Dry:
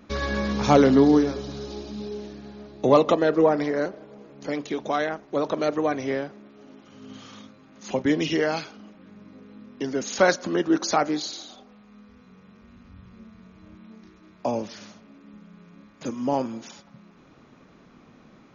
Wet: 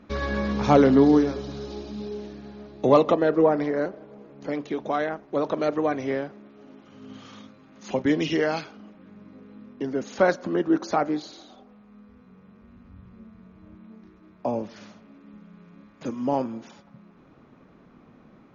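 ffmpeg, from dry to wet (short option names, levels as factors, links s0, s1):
-af "asetnsamples=n=441:p=0,asendcmd='1.01 lowpass f 4200;3.09 lowpass f 2000;5.34 lowpass f 3000;7.25 lowpass f 4500;8.61 lowpass f 2400;9.73 lowpass f 1300;14.76 lowpass f 2700;16.44 lowpass f 1600',lowpass=f=2700:p=1"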